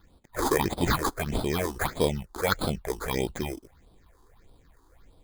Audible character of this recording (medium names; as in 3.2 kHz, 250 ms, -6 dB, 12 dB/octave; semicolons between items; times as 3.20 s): aliases and images of a low sample rate 2.8 kHz, jitter 0%; phasing stages 6, 1.6 Hz, lowest notch 150–1900 Hz